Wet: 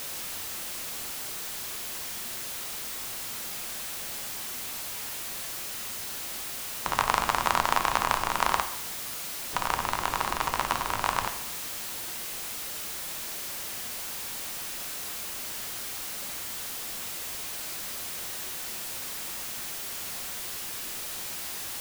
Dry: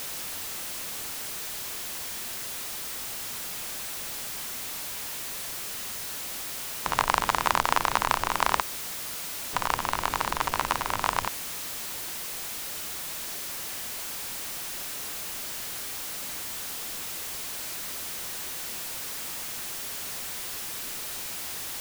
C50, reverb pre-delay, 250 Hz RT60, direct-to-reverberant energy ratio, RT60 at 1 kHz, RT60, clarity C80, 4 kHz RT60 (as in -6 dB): 10.5 dB, 4 ms, 0.70 s, 6.5 dB, 0.75 s, 0.75 s, 13.0 dB, 0.70 s